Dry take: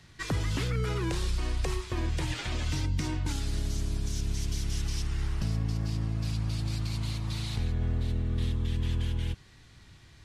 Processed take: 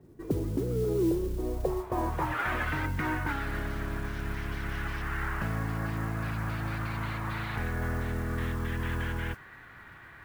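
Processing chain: overdrive pedal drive 16 dB, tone 2800 Hz, clips at -20 dBFS; low-pass sweep 370 Hz -> 1600 Hz, 1.33–2.52; modulation noise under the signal 24 dB

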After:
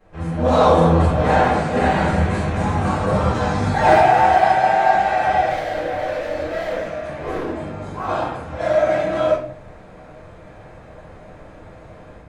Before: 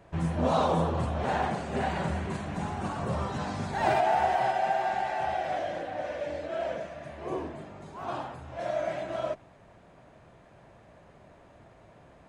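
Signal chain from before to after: AGC gain up to 10.5 dB; 5.49–7.52 hard clip -25 dBFS, distortion -16 dB; reverb RT60 0.45 s, pre-delay 4 ms, DRR -12 dB; gain -9.5 dB

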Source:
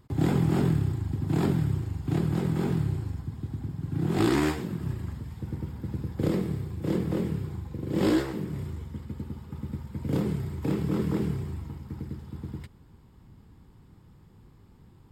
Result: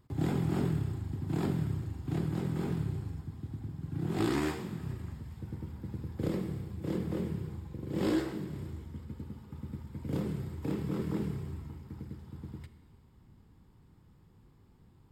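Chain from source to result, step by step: Schroeder reverb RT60 1.6 s, combs from 25 ms, DRR 11 dB; gain -6.5 dB

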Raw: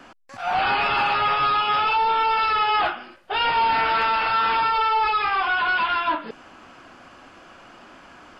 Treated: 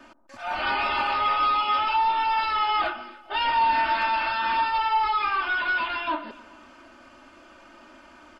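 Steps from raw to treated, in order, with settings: comb 3.3 ms, depth 93%; echo with dull and thin repeats by turns 0.14 s, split 1100 Hz, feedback 51%, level -14 dB; gain -6.5 dB

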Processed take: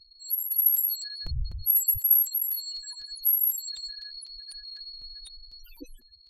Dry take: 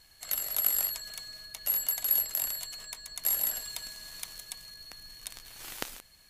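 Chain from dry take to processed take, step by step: 1.25–1.98 wind noise 96 Hz -42 dBFS; loudest bins only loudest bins 4; crackling interface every 0.25 s, samples 256, repeat, from 0.51; gain +8.5 dB

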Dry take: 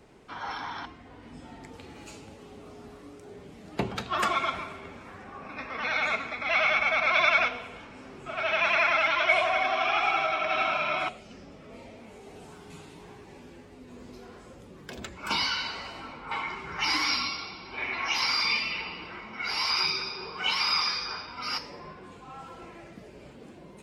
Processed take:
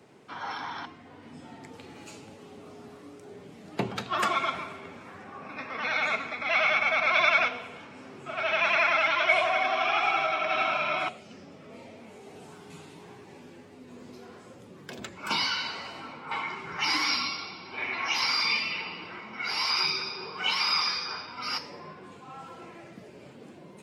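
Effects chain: HPF 99 Hz 24 dB/oct

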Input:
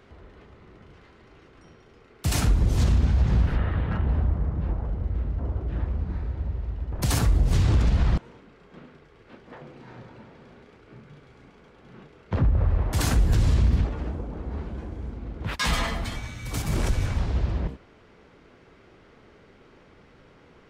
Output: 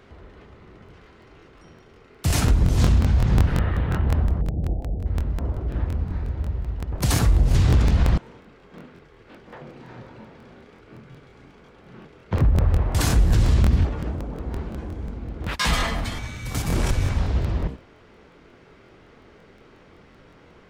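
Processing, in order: 4.41–5.06 elliptic low-pass 750 Hz, stop band 40 dB; crackling interface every 0.18 s, samples 1024, repeat, from 0.84; gain +3 dB

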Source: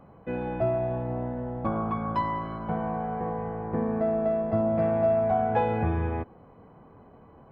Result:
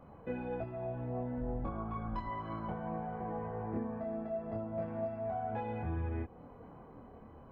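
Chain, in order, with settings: 1.37–2.27 octaver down 2 oct, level -1 dB; compressor, threshold -34 dBFS, peak gain reduction 13.5 dB; chorus voices 6, 0.62 Hz, delay 26 ms, depth 2.4 ms; gain +1 dB

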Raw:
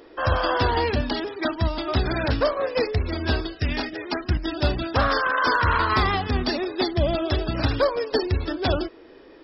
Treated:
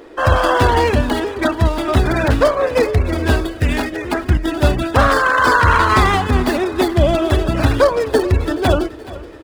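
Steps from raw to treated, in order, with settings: median filter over 9 samples; feedback echo 0.426 s, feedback 55%, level -18 dB; gain +8.5 dB

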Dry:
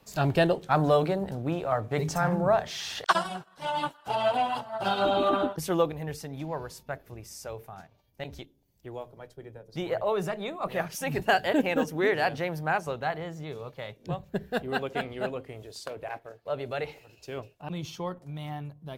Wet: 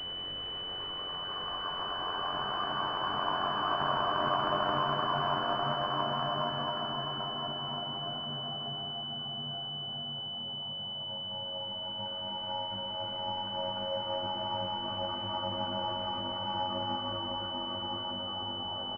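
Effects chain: low shelf 180 Hz +9.5 dB; de-hum 100.3 Hz, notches 9; in parallel at -11 dB: bit-crush 4-bit; on the sum: Paulstretch 17×, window 0.50 s, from 2.87; ring modulator 45 Hz; doubler 20 ms -4.5 dB; on a send: echo 0.294 s -8 dB; on the sum: pulse-width modulation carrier 3000 Hz; gain -5.5 dB

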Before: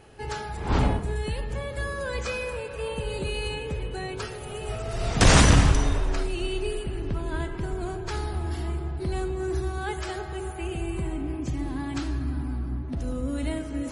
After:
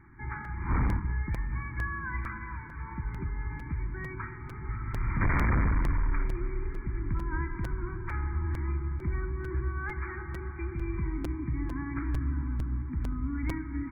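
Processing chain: elliptic band-stop 340–940 Hz, stop band 40 dB; dynamic EQ 250 Hz, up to -4 dB, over -40 dBFS, Q 0.75; overloaded stage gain 22 dB; brick-wall FIR low-pass 2400 Hz; echo 0.83 s -21.5 dB; crackling interface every 0.45 s, samples 256, repeat, from 0.44

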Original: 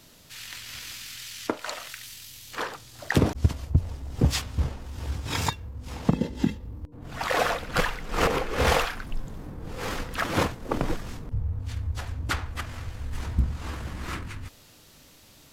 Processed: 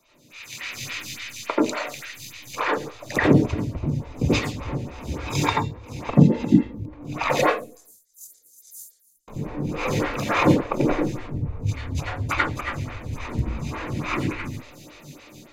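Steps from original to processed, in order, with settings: 7.41–9.28 inverse Chebyshev high-pass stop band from 2800 Hz, stop band 60 dB; AGC gain up to 12.5 dB; reverb RT60 0.40 s, pre-delay 79 ms, DRR 0 dB; photocell phaser 3.5 Hz; gain -9.5 dB

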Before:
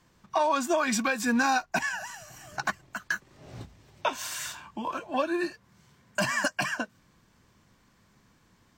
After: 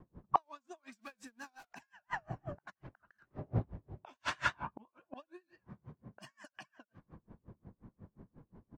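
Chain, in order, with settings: 0.92–1.65 zero-crossing step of -30 dBFS; low-pass opened by the level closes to 530 Hz, open at -22.5 dBFS; speakerphone echo 80 ms, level -15 dB; vibrato 5.8 Hz 85 cents; flipped gate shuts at -28 dBFS, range -36 dB; dB-linear tremolo 5.6 Hz, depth 35 dB; gain +14.5 dB

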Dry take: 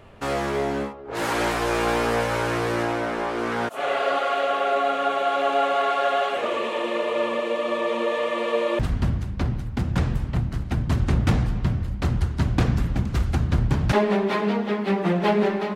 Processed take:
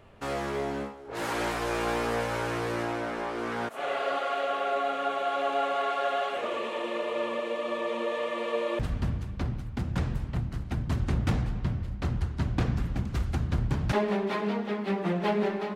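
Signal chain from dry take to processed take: 11.41–12.85 high shelf 7600 Hz -5.5 dB; on a send: thinning echo 0.189 s, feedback 67%, high-pass 420 Hz, level -20 dB; on the sum: gain -6.5 dB

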